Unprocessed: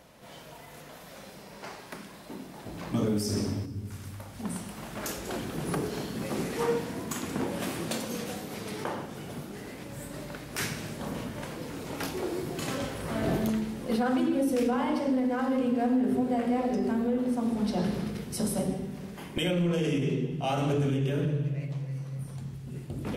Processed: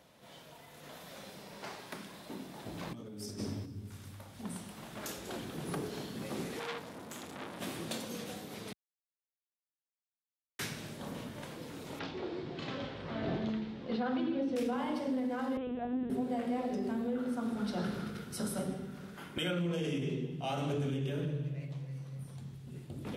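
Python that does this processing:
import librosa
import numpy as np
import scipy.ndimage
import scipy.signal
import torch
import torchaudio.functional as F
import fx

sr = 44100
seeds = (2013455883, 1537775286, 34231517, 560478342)

y = fx.over_compress(x, sr, threshold_db=-35.0, ratio=-1.0, at=(0.82, 3.38), fade=0.02)
y = fx.transformer_sat(y, sr, knee_hz=2800.0, at=(6.59, 7.61))
y = fx.lowpass(y, sr, hz=4500.0, slope=24, at=(11.99, 14.56))
y = fx.lpc_vocoder(y, sr, seeds[0], excitation='pitch_kept', order=10, at=(15.57, 16.1))
y = fx.peak_eq(y, sr, hz=1400.0, db=15.0, octaves=0.28, at=(17.15, 19.61))
y = fx.edit(y, sr, fx.silence(start_s=8.73, length_s=1.86), tone=tone)
y = scipy.signal.sosfilt(scipy.signal.butter(2, 69.0, 'highpass', fs=sr, output='sos'), y)
y = fx.peak_eq(y, sr, hz=3600.0, db=4.5, octaves=0.44)
y = F.gain(torch.from_numpy(y), -7.0).numpy()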